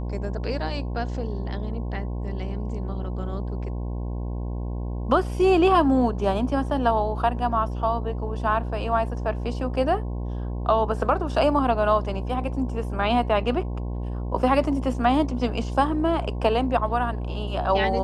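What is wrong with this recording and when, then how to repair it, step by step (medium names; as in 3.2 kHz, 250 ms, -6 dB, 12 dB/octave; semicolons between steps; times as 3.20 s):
buzz 60 Hz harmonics 18 -29 dBFS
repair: de-hum 60 Hz, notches 18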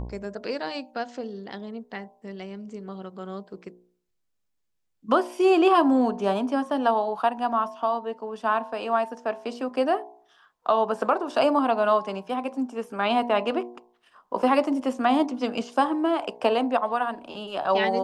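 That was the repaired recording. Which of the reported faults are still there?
nothing left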